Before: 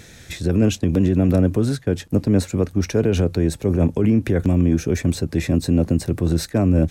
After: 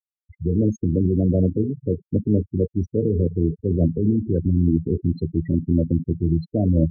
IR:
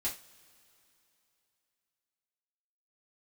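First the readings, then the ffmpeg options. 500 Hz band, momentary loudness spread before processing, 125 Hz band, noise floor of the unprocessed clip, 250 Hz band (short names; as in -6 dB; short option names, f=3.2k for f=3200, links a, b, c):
-3.0 dB, 4 LU, -1.5 dB, -45 dBFS, -2.5 dB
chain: -filter_complex "[0:a]asplit=2[a][b];[1:a]atrim=start_sample=2205,asetrate=22491,aresample=44100,highshelf=f=2.4k:g=10.5[c];[b][c]afir=irnorm=-1:irlink=0,volume=-13dB[d];[a][d]amix=inputs=2:normalize=0,afftfilt=real='re*gte(hypot(re,im),0.355)':imag='im*gte(hypot(re,im),0.355)':win_size=1024:overlap=0.75,afftdn=nr=14:nf=-26,volume=-4.5dB"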